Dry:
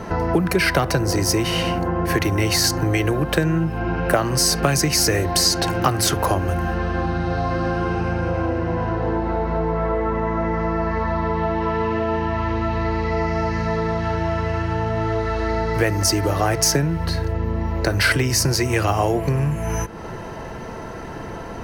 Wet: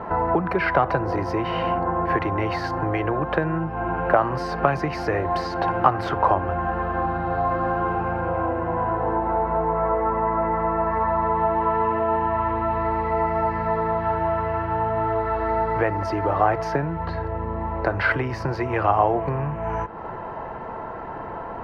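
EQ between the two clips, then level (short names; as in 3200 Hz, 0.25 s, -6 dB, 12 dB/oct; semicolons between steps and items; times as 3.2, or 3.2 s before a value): air absorption 370 m; bell 930 Hz +14 dB 1.8 oct; -7.5 dB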